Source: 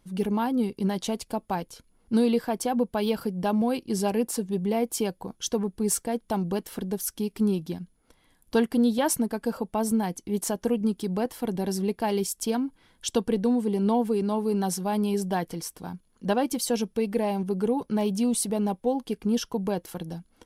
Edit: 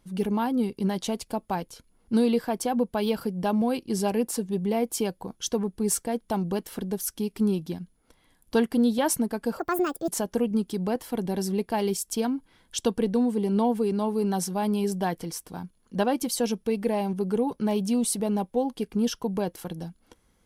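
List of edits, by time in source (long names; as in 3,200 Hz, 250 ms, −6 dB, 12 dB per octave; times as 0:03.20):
0:09.59–0:10.38: play speed 161%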